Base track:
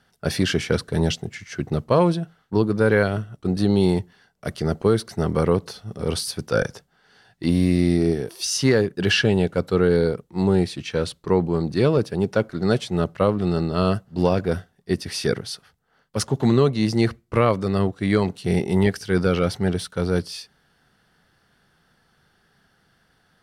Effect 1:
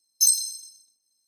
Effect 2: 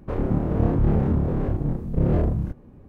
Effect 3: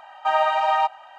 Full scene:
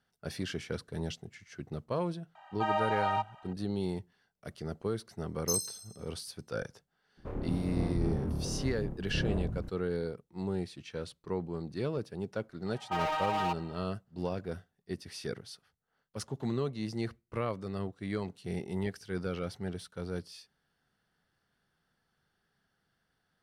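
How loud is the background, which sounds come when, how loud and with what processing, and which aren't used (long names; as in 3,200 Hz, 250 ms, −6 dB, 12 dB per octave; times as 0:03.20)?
base track −15.5 dB
0:02.35: mix in 3 −10.5 dB
0:05.27: mix in 1 −13 dB
0:07.17: mix in 2 −12.5 dB
0:12.66: mix in 3 −8.5 dB + hard clipping −20.5 dBFS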